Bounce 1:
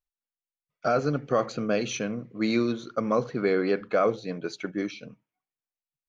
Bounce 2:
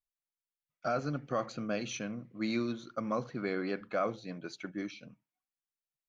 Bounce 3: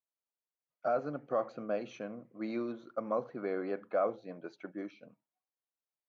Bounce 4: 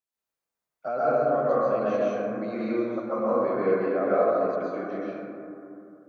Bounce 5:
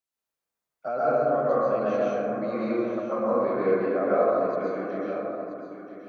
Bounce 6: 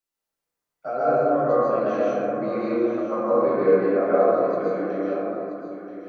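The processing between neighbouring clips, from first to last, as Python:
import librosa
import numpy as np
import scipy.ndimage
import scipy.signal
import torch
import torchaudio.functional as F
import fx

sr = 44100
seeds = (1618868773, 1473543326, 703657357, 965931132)

y1 = fx.peak_eq(x, sr, hz=440.0, db=-8.5, octaves=0.35)
y1 = y1 * 10.0 ** (-7.0 / 20.0)
y2 = fx.bandpass_q(y1, sr, hz=610.0, q=1.1)
y2 = y2 * 10.0 ** (3.0 / 20.0)
y3 = fx.rev_plate(y2, sr, seeds[0], rt60_s=2.8, hf_ratio=0.25, predelay_ms=110, drr_db=-9.5)
y4 = y3 + 10.0 ** (-10.5 / 20.0) * np.pad(y3, (int(980 * sr / 1000.0), 0))[:len(y3)]
y5 = fx.room_shoebox(y4, sr, seeds[1], volume_m3=41.0, walls='mixed', distance_m=0.5)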